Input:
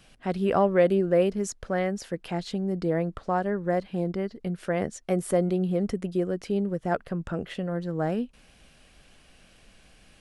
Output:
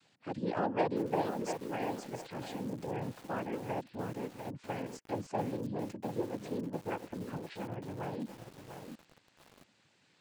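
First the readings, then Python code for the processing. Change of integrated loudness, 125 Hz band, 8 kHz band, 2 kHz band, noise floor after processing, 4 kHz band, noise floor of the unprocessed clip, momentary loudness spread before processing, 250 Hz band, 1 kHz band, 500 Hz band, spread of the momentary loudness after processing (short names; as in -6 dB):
-10.5 dB, -11.0 dB, -11.0 dB, -9.0 dB, -70 dBFS, -7.5 dB, -58 dBFS, 10 LU, -10.5 dB, -6.0 dB, -12.0 dB, 11 LU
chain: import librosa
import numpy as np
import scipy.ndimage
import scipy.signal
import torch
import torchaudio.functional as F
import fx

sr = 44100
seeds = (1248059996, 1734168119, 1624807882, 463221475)

y = fx.cheby_harmonics(x, sr, harmonics=(3, 5), levels_db=(-14, -26), full_scale_db=-9.5)
y = fx.noise_vocoder(y, sr, seeds[0], bands=8)
y = fx.echo_crushed(y, sr, ms=696, feedback_pct=35, bits=7, wet_db=-6.5)
y = y * librosa.db_to_amplitude(-7.0)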